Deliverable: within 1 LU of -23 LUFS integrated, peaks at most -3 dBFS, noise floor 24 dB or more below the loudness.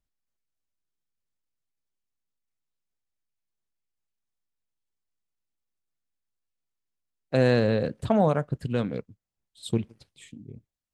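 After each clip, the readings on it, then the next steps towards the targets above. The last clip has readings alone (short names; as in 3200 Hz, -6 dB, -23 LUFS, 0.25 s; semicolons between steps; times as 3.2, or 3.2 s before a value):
loudness -25.5 LUFS; peak -9.0 dBFS; loudness target -23.0 LUFS
-> gain +2.5 dB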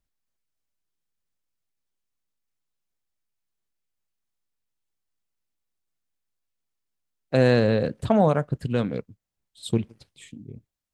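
loudness -23.0 LUFS; peak -6.5 dBFS; noise floor -82 dBFS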